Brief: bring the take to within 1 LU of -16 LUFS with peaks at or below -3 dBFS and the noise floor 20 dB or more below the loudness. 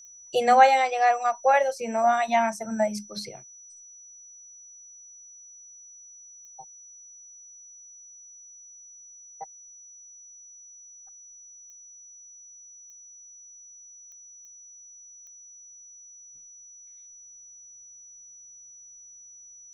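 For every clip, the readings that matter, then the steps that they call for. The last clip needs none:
clicks 7; steady tone 5900 Hz; tone level -46 dBFS; loudness -22.5 LUFS; peak -4.5 dBFS; loudness target -16.0 LUFS
-> de-click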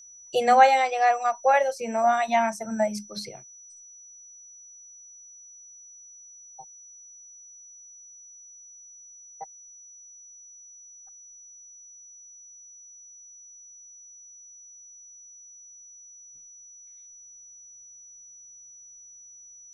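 clicks 0; steady tone 5900 Hz; tone level -46 dBFS
-> notch 5900 Hz, Q 30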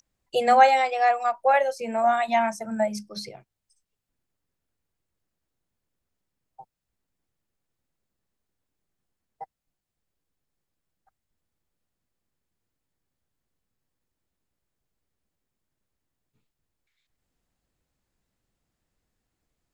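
steady tone none; loudness -22.0 LUFS; peak -4.5 dBFS; loudness target -16.0 LUFS
-> gain +6 dB; limiter -3 dBFS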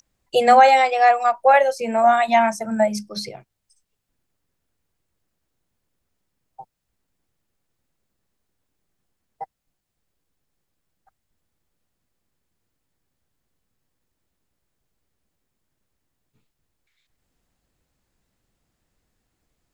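loudness -16.5 LUFS; peak -3.0 dBFS; noise floor -78 dBFS

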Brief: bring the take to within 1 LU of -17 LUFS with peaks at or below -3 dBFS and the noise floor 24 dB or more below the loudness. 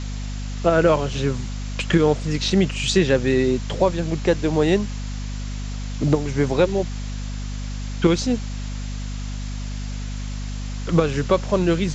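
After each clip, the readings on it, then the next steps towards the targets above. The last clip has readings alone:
hum 50 Hz; harmonics up to 250 Hz; hum level -26 dBFS; noise floor -29 dBFS; noise floor target -47 dBFS; loudness -22.5 LUFS; peak -4.5 dBFS; loudness target -17.0 LUFS
-> notches 50/100/150/200/250 Hz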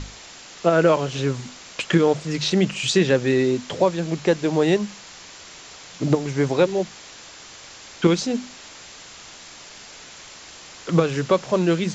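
hum none; noise floor -43 dBFS; noise floor target -46 dBFS
-> denoiser 6 dB, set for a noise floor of -43 dBFS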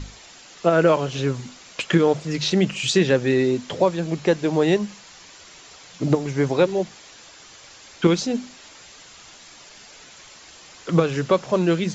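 noise floor -46 dBFS; loudness -21.5 LUFS; peak -4.5 dBFS; loudness target -17.0 LUFS
-> gain +4.5 dB; limiter -3 dBFS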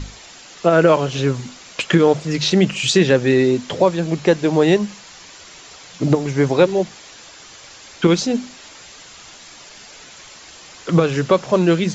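loudness -17.5 LUFS; peak -3.0 dBFS; noise floor -42 dBFS

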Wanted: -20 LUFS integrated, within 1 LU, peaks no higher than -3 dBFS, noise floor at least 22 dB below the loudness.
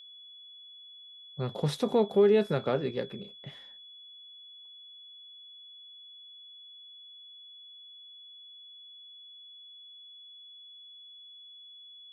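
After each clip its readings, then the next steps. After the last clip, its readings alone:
steady tone 3400 Hz; tone level -48 dBFS; loudness -28.5 LUFS; peak -14.0 dBFS; loudness target -20.0 LUFS
-> notch 3400 Hz, Q 30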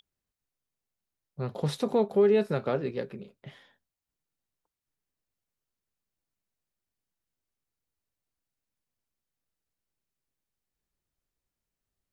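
steady tone none; loudness -27.5 LUFS; peak -14.0 dBFS; loudness target -20.0 LUFS
-> gain +7.5 dB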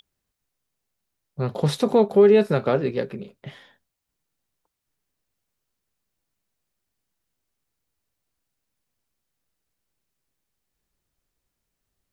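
loudness -20.0 LUFS; peak -6.5 dBFS; noise floor -81 dBFS

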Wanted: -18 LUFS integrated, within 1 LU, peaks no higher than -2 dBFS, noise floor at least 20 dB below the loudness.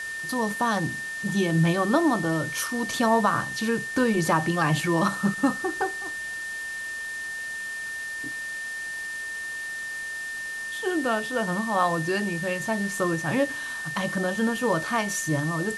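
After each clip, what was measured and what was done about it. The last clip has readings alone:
steady tone 1800 Hz; tone level -31 dBFS; noise floor -34 dBFS; noise floor target -47 dBFS; loudness -26.5 LUFS; peak -8.5 dBFS; loudness target -18.0 LUFS
-> notch 1800 Hz, Q 30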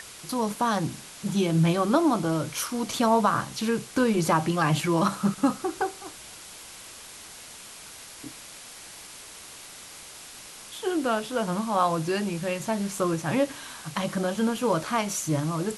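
steady tone none; noise floor -45 dBFS; noise floor target -46 dBFS
-> denoiser 6 dB, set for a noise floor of -45 dBFS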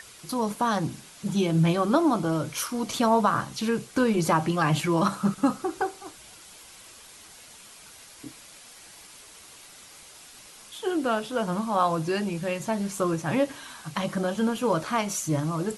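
noise floor -49 dBFS; loudness -26.0 LUFS; peak -9.0 dBFS; loudness target -18.0 LUFS
-> gain +8 dB; limiter -2 dBFS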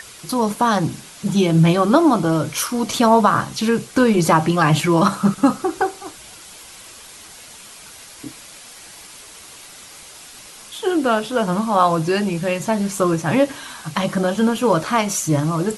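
loudness -18.0 LUFS; peak -2.0 dBFS; noise floor -41 dBFS

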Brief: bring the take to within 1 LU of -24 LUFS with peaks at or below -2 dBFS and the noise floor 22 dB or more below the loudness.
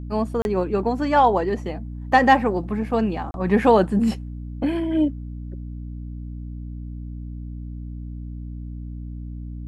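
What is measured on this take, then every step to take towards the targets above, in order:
dropouts 2; longest dropout 31 ms; hum 60 Hz; harmonics up to 300 Hz; hum level -30 dBFS; loudness -21.0 LUFS; peak -3.5 dBFS; loudness target -24.0 LUFS
-> interpolate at 0.42/3.31, 31 ms; notches 60/120/180/240/300 Hz; gain -3 dB

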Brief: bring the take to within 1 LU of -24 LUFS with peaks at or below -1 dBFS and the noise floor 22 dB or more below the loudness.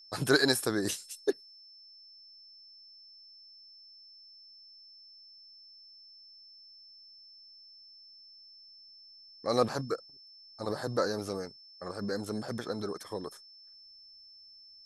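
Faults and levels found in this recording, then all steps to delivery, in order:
steady tone 5300 Hz; tone level -52 dBFS; loudness -32.5 LUFS; peak -10.0 dBFS; loudness target -24.0 LUFS
-> notch 5300 Hz, Q 30; gain +8.5 dB

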